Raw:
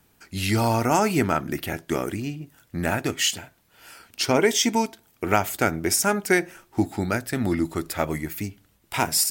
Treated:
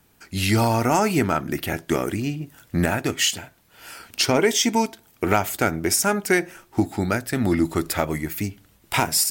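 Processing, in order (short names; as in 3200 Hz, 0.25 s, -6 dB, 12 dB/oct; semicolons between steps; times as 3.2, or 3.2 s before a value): recorder AGC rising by 6.5 dB/s; in parallel at -4 dB: soft clip -12 dBFS, distortion -17 dB; on the sum: gain -3 dB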